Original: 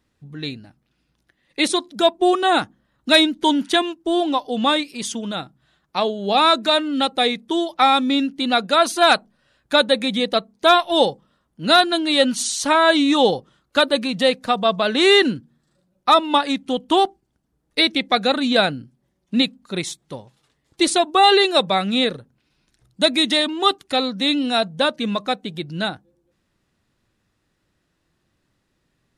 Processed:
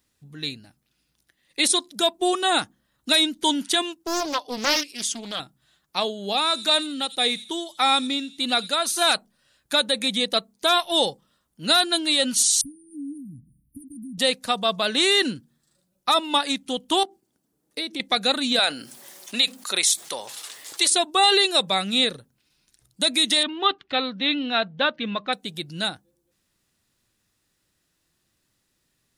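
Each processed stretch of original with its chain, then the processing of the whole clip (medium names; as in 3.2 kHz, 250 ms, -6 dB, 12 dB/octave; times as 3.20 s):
4.04–5.40 s: high-pass 220 Hz + treble shelf 10 kHz -11 dB + loudspeaker Doppler distortion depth 0.68 ms
6.19–9.13 s: feedback echo behind a high-pass 85 ms, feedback 43%, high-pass 4.9 kHz, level -9 dB + tremolo 1.7 Hz, depth 47%
12.61–14.18 s: tone controls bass +13 dB, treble -3 dB + compression 2:1, threshold -37 dBFS + brick-wall FIR band-stop 320–8800 Hz
17.03–18.00 s: high-pass 230 Hz 6 dB/octave + peaking EQ 300 Hz +10 dB 2.7 oct + compression 4:1, threshold -26 dBFS
18.59–20.90 s: high-pass 590 Hz + level flattener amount 50%
23.43–25.33 s: low-pass 3.4 kHz 24 dB/octave + dynamic bell 1.6 kHz, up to +5 dB, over -33 dBFS, Q 1.5
whole clip: pre-emphasis filter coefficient 0.8; loudness maximiser +15.5 dB; trim -8 dB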